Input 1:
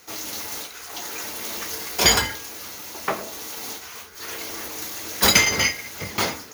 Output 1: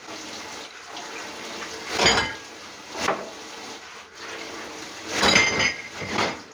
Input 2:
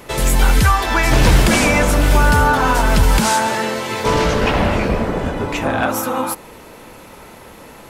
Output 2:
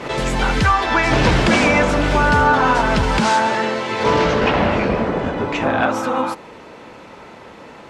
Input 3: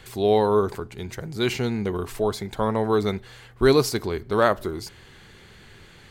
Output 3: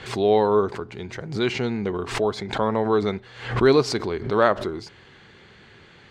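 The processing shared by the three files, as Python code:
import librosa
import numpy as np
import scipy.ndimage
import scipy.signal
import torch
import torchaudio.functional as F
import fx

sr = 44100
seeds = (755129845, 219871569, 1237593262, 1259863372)

y = fx.highpass(x, sr, hz=150.0, slope=6)
y = fx.air_absorb(y, sr, metres=120.0)
y = fx.pre_swell(y, sr, db_per_s=100.0)
y = y * 10.0 ** (1.5 / 20.0)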